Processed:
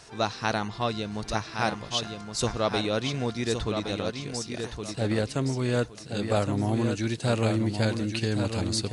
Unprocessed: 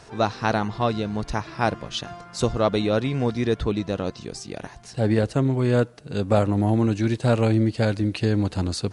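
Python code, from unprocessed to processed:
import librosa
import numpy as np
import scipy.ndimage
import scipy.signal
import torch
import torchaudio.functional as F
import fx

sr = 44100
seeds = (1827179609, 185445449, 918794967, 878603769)

y = fx.high_shelf(x, sr, hz=2100.0, db=10.0)
y = fx.echo_feedback(y, sr, ms=1117, feedback_pct=26, wet_db=-6.5)
y = F.gain(torch.from_numpy(y), -6.5).numpy()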